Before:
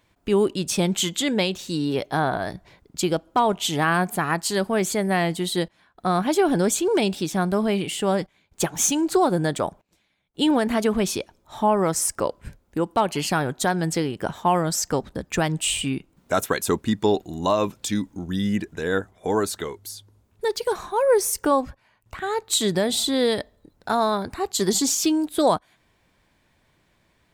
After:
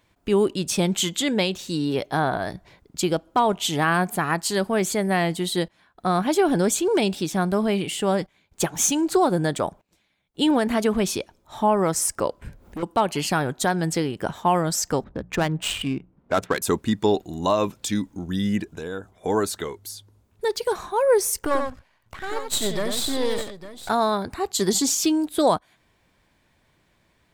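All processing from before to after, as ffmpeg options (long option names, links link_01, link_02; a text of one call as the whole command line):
ffmpeg -i in.wav -filter_complex "[0:a]asettb=1/sr,asplit=3[link_01][link_02][link_03];[link_01]atrim=end=12.424[link_04];[link_02]atrim=start=12.42:end=12.83,asetpts=PTS-STARTPTS,afade=type=in:duration=0.004:curve=qsin,afade=type=out:start_time=0.406:duration=0.004:curve=qsin,equalizer=frequency=7500:width_type=o:width=2.9:gain=-6,acompressor=mode=upward:threshold=-33dB:ratio=2.5:attack=3.2:release=140:knee=2.83:detection=peak,asoftclip=type=hard:threshold=-28.5dB[link_05];[link_03]atrim=start=12.826[link_06];[link_04][link_05]acrossfade=duration=0.004:curve1=hsin:curve2=qsin[link_07];[link_07][link_06]acrossfade=duration=0.004:curve1=qsin:curve2=hsin,asettb=1/sr,asplit=3[link_08][link_09][link_10];[link_08]atrim=end=15.044[link_11];[link_09]atrim=start=15.04:end=16.62,asetpts=PTS-STARTPTS,afade=type=in:duration=0.004:curve=qsin,afade=type=out:start_time=1.576:duration=0.004:curve=qsin,bandreject=frequency=60:width_type=h:width=6,bandreject=frequency=120:width_type=h:width=6,bandreject=frequency=180:width_type=h:width=6,adynamicsmooth=sensitivity=3.5:basefreq=1400[link_12];[link_10]atrim=start=16.616[link_13];[link_11][link_12]acrossfade=duration=0.004:curve1=hsin:curve2=qsin[link_14];[link_14][link_13]acrossfade=duration=0.004:curve1=qsin:curve2=hsin,asettb=1/sr,asplit=3[link_15][link_16][link_17];[link_15]atrim=end=18.634[link_18];[link_16]atrim=start=18.63:end=19.13,asetpts=PTS-STARTPTS,afade=type=in:duration=0.004:curve=qsin,afade=type=out:start_time=0.496:duration=0.004:curve=qsin,equalizer=frequency=1900:width=6.5:gain=-13,acompressor=threshold=-30dB:ratio=3:attack=3.2:release=140:knee=1:detection=peak[link_19];[link_17]atrim=start=19.126[link_20];[link_18][link_19]acrossfade=duration=0.004:curve1=hsin:curve2=qsin[link_21];[link_21][link_20]acrossfade=duration=0.004:curve1=qsin:curve2=hsin,asettb=1/sr,asplit=3[link_22][link_23][link_24];[link_22]atrim=end=21.394[link_25];[link_23]atrim=start=21.39:end=23.89,asetpts=PTS-STARTPTS,afade=type=in:duration=0.004:curve=qsin,afade=type=out:start_time=2.496:duration=0.004:curve=qsin,aeval=exprs='if(lt(val(0),0),0.251*val(0),val(0))':channel_layout=same,aecho=1:1:91|856:0.501|0.2,atrim=end_sample=110250[link_26];[link_24]atrim=start=23.886[link_27];[link_25][link_26]acrossfade=duration=0.004:curve1=hsin:curve2=qsin[link_28];[link_28][link_27]acrossfade=duration=0.004:curve1=qsin:curve2=hsin" out.wav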